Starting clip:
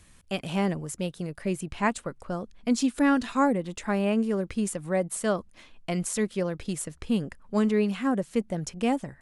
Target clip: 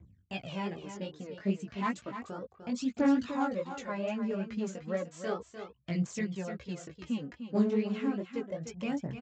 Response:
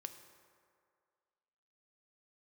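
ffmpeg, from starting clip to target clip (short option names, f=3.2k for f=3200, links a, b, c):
-filter_complex "[0:a]asplit=2[a][b];[b]acompressor=threshold=-38dB:ratio=6,volume=-1dB[c];[a][c]amix=inputs=2:normalize=0,aphaser=in_gain=1:out_gain=1:delay=5:decay=0.65:speed=0.33:type=triangular,anlmdn=0.1,areverse,acompressor=mode=upward:threshold=-33dB:ratio=2.5,areverse,aeval=exprs='clip(val(0),-1,0.188)':c=same,lowshelf=f=130:g=4,aresample=16000,aresample=44100,highpass=f=83:w=0.5412,highpass=f=83:w=1.3066,flanger=delay=15:depth=6.4:speed=2.4,highshelf=f=5.5k:g=-4.5,aecho=1:1:300:0.335,volume=-8dB"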